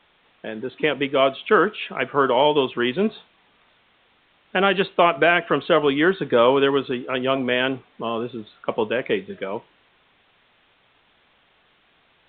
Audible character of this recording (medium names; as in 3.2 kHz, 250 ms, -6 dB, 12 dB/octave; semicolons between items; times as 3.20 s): a quantiser's noise floor 10-bit, dither triangular; µ-law